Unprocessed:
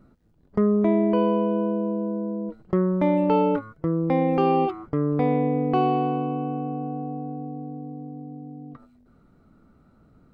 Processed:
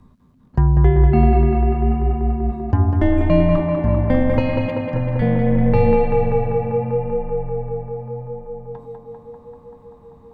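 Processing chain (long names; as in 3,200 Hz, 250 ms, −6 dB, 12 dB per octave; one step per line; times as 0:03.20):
0:04.39–0:05.22: flat-topped bell 640 Hz −15.5 dB 2.3 octaves
frequency shifter −270 Hz
tape delay 195 ms, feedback 89%, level −3.5 dB, low-pass 3,000 Hz
level +6 dB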